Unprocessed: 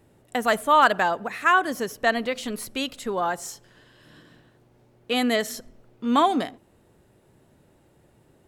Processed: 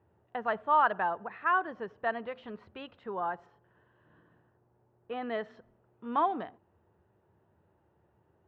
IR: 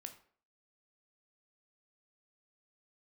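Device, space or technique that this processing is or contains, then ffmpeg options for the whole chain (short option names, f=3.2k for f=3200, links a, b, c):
bass cabinet: -filter_complex "[0:a]highpass=80,equalizer=f=85:t=q:w=4:g=8,equalizer=f=140:t=q:w=4:g=-5,equalizer=f=260:t=q:w=4:g=-10,equalizer=f=550:t=q:w=4:g=-3,equalizer=f=930:t=q:w=4:g=4,equalizer=f=2.2k:t=q:w=4:g=-9,lowpass=f=2.4k:w=0.5412,lowpass=f=2.4k:w=1.3066,asplit=3[a][b][c];[a]afade=t=out:st=3.45:d=0.02[d];[b]lowpass=f=1.8k:p=1,afade=t=in:st=3.45:d=0.02,afade=t=out:st=5.21:d=0.02[e];[c]afade=t=in:st=5.21:d=0.02[f];[d][e][f]amix=inputs=3:normalize=0,volume=-8.5dB"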